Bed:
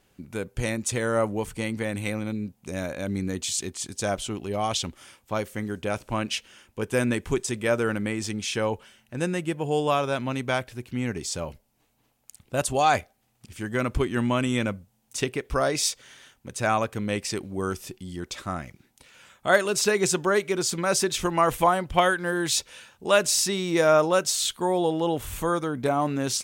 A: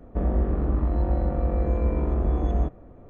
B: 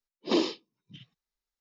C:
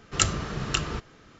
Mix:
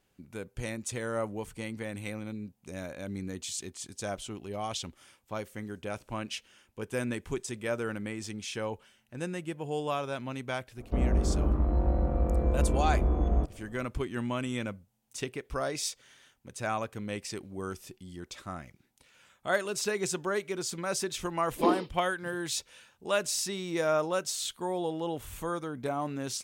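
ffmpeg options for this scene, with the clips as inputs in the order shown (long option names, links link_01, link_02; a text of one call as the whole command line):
ffmpeg -i bed.wav -i cue0.wav -i cue1.wav -filter_complex "[0:a]volume=-8.5dB[link_01];[1:a]bandreject=frequency=1800:width=12[link_02];[2:a]lowpass=frequency=1100:poles=1[link_03];[link_02]atrim=end=3.09,asetpts=PTS-STARTPTS,volume=-3dB,afade=type=in:duration=0.004:curve=hsin,afade=type=out:start_time=3.086:duration=0.004:curve=hsin,adelay=10770[link_04];[link_03]atrim=end=1.6,asetpts=PTS-STARTPTS,volume=-1dB,afade=type=in:duration=0.004:curve=hsin,afade=type=out:start_time=1.596:duration=0.004:curve=hsin,adelay=940212S[link_05];[link_01][link_04][link_05]amix=inputs=3:normalize=0" out.wav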